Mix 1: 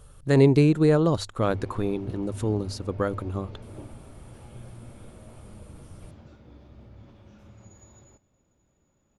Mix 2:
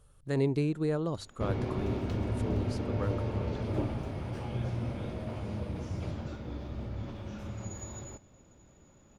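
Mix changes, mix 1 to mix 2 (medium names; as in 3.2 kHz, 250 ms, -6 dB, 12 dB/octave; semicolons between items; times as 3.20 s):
speech -11.0 dB; background +10.5 dB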